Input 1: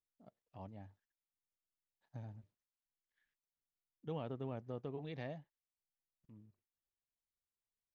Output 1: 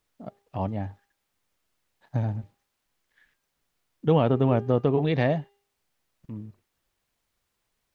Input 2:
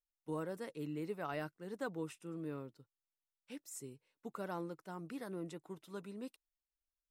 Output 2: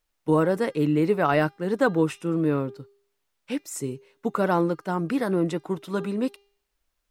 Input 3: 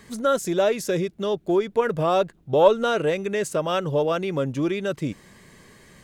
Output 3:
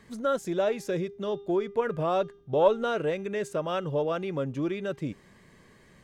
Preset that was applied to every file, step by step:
high shelf 4400 Hz -8.5 dB; de-hum 401.8 Hz, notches 16; normalise peaks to -9 dBFS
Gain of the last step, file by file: +22.0, +20.0, -5.5 dB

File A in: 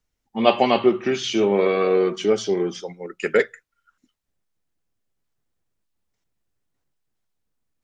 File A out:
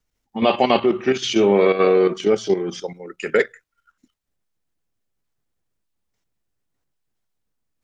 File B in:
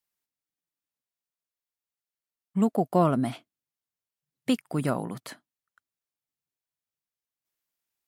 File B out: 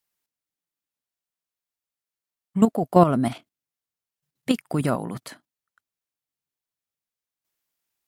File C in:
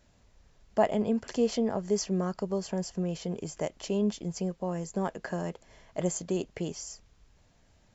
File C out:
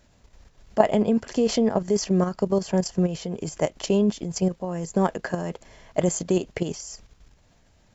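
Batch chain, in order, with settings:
level quantiser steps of 10 dB; normalise peaks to -2 dBFS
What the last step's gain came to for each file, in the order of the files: +5.5, +8.5, +11.0 dB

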